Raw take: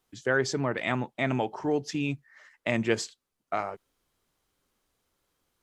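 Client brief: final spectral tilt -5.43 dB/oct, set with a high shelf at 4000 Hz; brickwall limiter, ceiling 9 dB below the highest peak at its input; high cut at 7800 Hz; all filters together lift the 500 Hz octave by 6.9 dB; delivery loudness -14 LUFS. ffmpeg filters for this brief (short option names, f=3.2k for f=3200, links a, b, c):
-af "lowpass=7.8k,equalizer=f=500:t=o:g=8.5,highshelf=f=4k:g=-6.5,volume=15dB,alimiter=limit=-1dB:level=0:latency=1"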